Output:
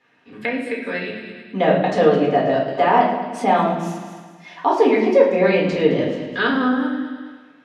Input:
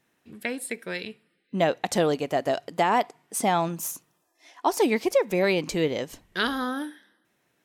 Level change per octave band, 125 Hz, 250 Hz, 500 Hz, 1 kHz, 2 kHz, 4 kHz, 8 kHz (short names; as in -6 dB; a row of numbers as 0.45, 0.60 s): +7.0 dB, +8.5 dB, +8.5 dB, +7.5 dB, +6.5 dB, +1.5 dB, under -10 dB